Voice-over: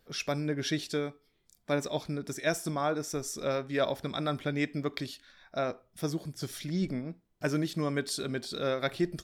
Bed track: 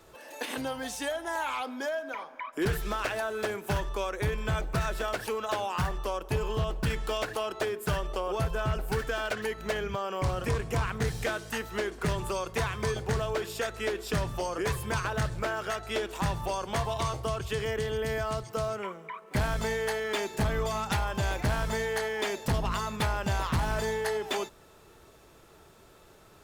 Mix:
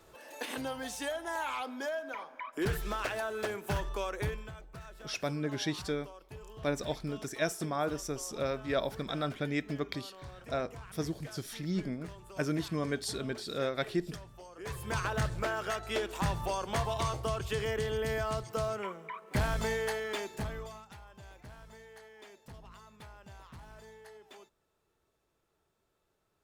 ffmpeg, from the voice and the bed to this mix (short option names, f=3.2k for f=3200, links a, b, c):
-filter_complex "[0:a]adelay=4950,volume=-2.5dB[a];[1:a]volume=13dB,afade=t=out:st=4.21:d=0.31:silence=0.177828,afade=t=in:st=14.56:d=0.47:silence=0.149624,afade=t=out:st=19.73:d=1.14:silence=0.0944061[b];[a][b]amix=inputs=2:normalize=0"